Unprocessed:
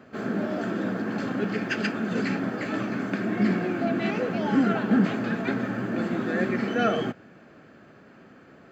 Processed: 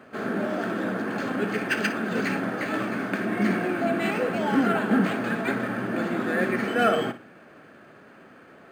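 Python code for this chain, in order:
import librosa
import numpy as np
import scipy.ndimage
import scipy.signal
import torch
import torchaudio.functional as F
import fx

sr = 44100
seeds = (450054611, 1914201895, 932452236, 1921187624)

p1 = fx.low_shelf(x, sr, hz=320.0, db=-9.0)
p2 = p1 + fx.room_flutter(p1, sr, wall_m=9.9, rt60_s=0.27, dry=0)
p3 = np.interp(np.arange(len(p2)), np.arange(len(p2))[::4], p2[::4])
y = p3 * librosa.db_to_amplitude(4.5)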